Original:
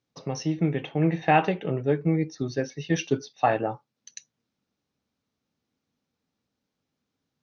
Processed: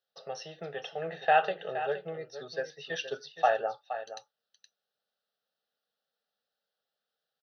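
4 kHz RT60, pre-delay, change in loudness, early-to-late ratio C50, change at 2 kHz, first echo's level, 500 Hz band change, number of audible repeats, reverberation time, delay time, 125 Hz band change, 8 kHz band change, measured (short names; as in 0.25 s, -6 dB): none, none, -6.0 dB, none, -2.0 dB, -11.5 dB, -4.0 dB, 1, none, 0.47 s, -23.0 dB, n/a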